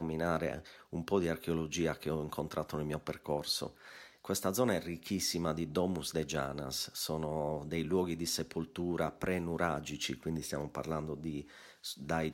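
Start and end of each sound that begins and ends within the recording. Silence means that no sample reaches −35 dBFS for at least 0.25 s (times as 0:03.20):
0:00.93–0:03.67
0:04.29–0:11.41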